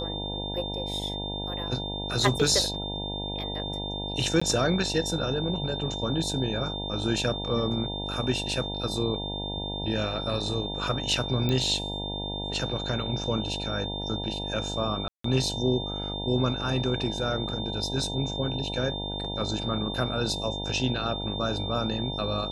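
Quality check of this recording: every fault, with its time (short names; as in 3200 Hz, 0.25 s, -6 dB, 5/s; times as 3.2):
buzz 50 Hz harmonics 19 -35 dBFS
tone 3600 Hz -34 dBFS
4.4–4.42 gap 15 ms
11.49 pop -15 dBFS
15.08–15.24 gap 0.164 s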